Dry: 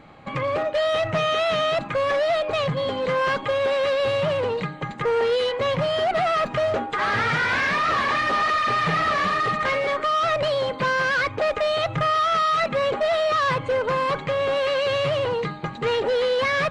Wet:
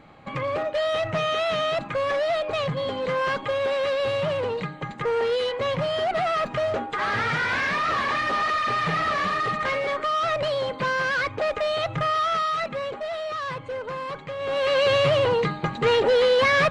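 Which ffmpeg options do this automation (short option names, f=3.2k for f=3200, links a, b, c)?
-af "volume=9.5dB,afade=t=out:st=12.26:d=0.68:silence=0.473151,afade=t=in:st=14.38:d=0.45:silence=0.251189"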